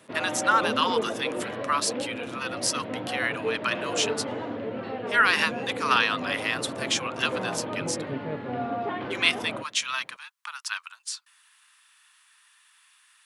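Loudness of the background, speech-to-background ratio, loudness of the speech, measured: -32.5 LUFS, 5.0 dB, -27.5 LUFS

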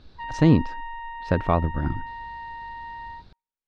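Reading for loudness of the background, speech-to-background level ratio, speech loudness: -36.5 LUFS, 13.5 dB, -23.0 LUFS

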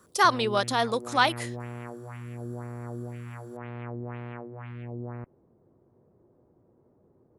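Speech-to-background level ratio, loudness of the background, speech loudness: 14.5 dB, -39.5 LUFS, -25.0 LUFS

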